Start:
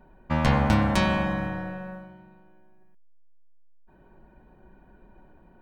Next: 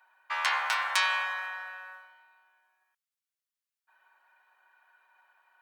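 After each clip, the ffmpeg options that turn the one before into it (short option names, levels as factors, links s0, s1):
-af "highpass=f=1100:w=0.5412,highpass=f=1100:w=1.3066,volume=1.41"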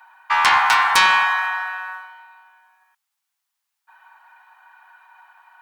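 -af "lowshelf=f=630:t=q:w=3:g=-9,aeval=exprs='0.398*sin(PI/2*2.51*val(0)/0.398)':c=same"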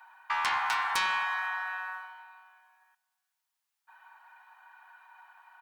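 -filter_complex "[0:a]acompressor=threshold=0.0398:ratio=2,asplit=2[s0][s1];[s1]adelay=374,lowpass=f=2000:p=1,volume=0.0708,asplit=2[s2][s3];[s3]adelay=374,lowpass=f=2000:p=1,volume=0.34[s4];[s0][s2][s4]amix=inputs=3:normalize=0,volume=0.531"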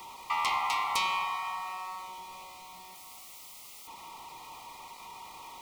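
-af "aeval=exprs='val(0)+0.5*0.00841*sgn(val(0))':c=same,asuperstop=centerf=1600:order=12:qfactor=2.6"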